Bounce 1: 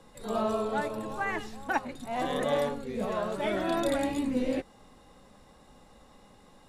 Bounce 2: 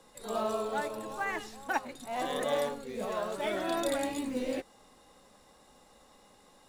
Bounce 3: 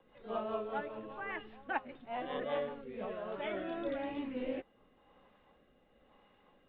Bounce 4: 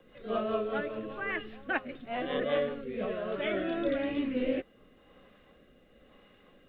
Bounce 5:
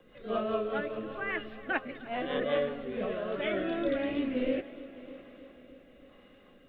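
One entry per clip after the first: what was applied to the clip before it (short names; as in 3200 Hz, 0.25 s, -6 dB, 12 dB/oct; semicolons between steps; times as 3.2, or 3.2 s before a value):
tone controls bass -8 dB, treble +5 dB; in parallel at -8 dB: short-mantissa float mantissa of 2-bit; on the sum: gain -5 dB
elliptic low-pass 3100 Hz, stop band 60 dB; rotary speaker horn 5 Hz, later 1 Hz, at 2.61; gain -2.5 dB
bell 890 Hz -14 dB 0.44 oct; gain +8.5 dB
multi-head echo 0.305 s, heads first and second, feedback 53%, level -20 dB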